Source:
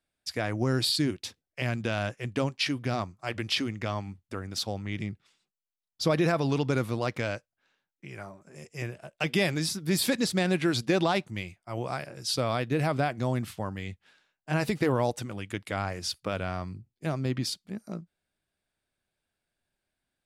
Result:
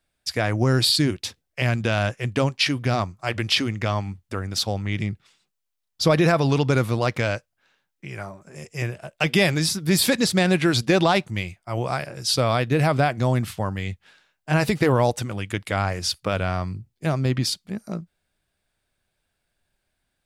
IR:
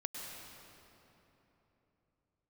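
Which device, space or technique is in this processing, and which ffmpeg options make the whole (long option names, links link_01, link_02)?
low shelf boost with a cut just above: -af "lowshelf=frequency=76:gain=6,equalizer=frequency=280:width_type=o:width=1.1:gain=-3,volume=7.5dB"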